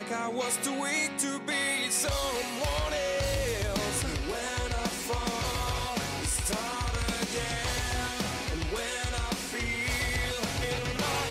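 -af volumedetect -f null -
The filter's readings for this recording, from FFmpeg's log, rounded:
mean_volume: -31.0 dB
max_volume: -17.7 dB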